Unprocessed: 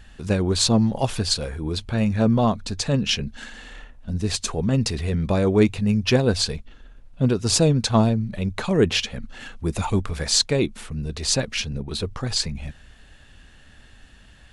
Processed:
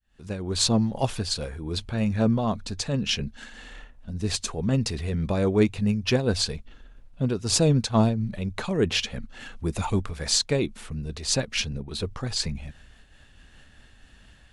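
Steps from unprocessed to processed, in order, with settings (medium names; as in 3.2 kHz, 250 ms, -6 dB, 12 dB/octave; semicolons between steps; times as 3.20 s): fade-in on the opening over 0.66 s; random flutter of the level, depth 65%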